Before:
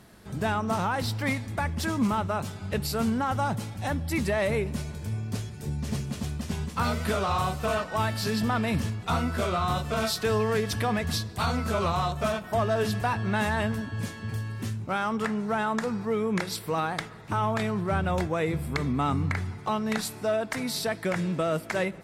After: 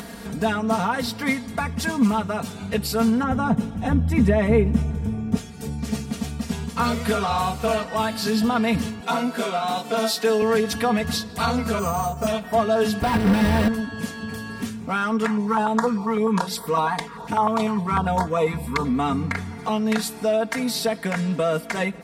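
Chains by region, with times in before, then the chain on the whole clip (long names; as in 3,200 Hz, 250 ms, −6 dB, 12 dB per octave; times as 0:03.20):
0:03.23–0:05.37: spectral tilt −3 dB per octave + notch filter 4,500 Hz, Q 5.3
0:09.00–0:10.42: high-pass filter 210 Hz 24 dB per octave + notch filter 1,200 Hz, Q 10
0:11.79–0:12.27: head-to-tape spacing loss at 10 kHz 23 dB + bad sample-rate conversion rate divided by 6×, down filtered, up hold
0:13.02–0:13.68: sign of each sample alone + spectral tilt −3 dB per octave + notch filter 6,700 Hz, Q 5.1
0:15.27–0:18.85: parametric band 1,000 Hz +13 dB 0.66 octaves + notch on a step sequencer 10 Hz 550–2,600 Hz
whole clip: high-pass filter 57 Hz; comb filter 4.3 ms, depth 90%; upward compression, threshold −28 dBFS; level +2 dB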